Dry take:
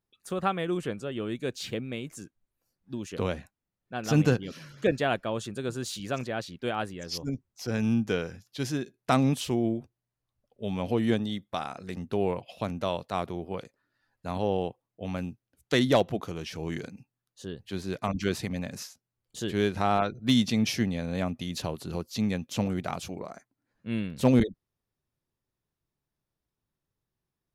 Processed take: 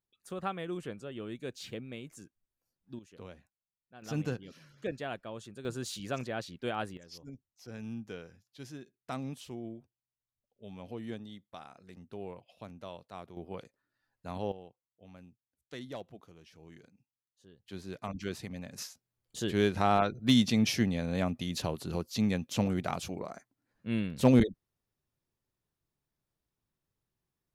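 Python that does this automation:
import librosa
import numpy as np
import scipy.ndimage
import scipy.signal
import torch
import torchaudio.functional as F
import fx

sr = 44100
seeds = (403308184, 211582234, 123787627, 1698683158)

y = fx.gain(x, sr, db=fx.steps((0.0, -8.0), (2.99, -18.5), (4.02, -11.5), (5.65, -4.0), (6.97, -15.0), (13.37, -7.0), (14.52, -20.0), (17.68, -9.0), (18.78, -1.0)))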